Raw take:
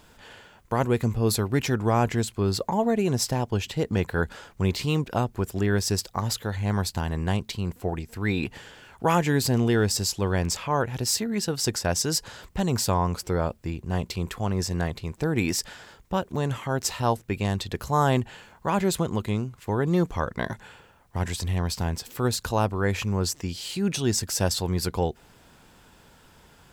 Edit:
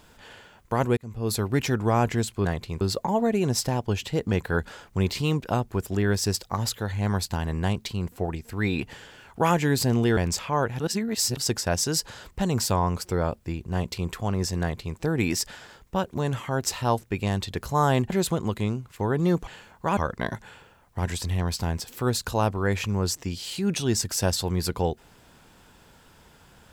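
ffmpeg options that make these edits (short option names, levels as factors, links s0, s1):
-filter_complex "[0:a]asplit=10[s0][s1][s2][s3][s4][s5][s6][s7][s8][s9];[s0]atrim=end=0.97,asetpts=PTS-STARTPTS,afade=t=out:st=0.966:d=0.004:c=hsin[s10];[s1]atrim=start=0.97:end=2.452,asetpts=PTS-STARTPTS,afade=t=in:d=0.49[s11];[s2]atrim=start=14.788:end=15.152[s12];[s3]atrim=start=2.448:end=9.812[s13];[s4]atrim=start=10.348:end=10.982[s14];[s5]atrim=start=10.978:end=11.552,asetpts=PTS-STARTPTS,areverse[s15];[s6]atrim=start=11.548:end=18.282[s16];[s7]atrim=start=18.778:end=20.152[s17];[s8]atrim=start=18.278:end=18.782[s18];[s9]atrim=start=20.148[s19];[s10][s11]concat=n=2:v=0:a=1[s20];[s20][s12]acrossfade=d=0.004:c1=hsin:c2=hsin[s21];[s21][s13]acrossfade=d=0.004:c1=hsin:c2=hsin[s22];[s22][s14]acrossfade=d=0.004:c1=hsin:c2=hsin[s23];[s23][s15]acrossfade=d=0.004:c1=hsin:c2=hsin[s24];[s24][s16]acrossfade=d=0.004:c1=hsin:c2=hsin[s25];[s25][s17]acrossfade=d=0.004:c1=hsin:c2=hsin[s26];[s26][s18]acrossfade=d=0.004:c1=hsin:c2=hsin[s27];[s27][s19]acrossfade=d=0.004:c1=hsin:c2=hsin"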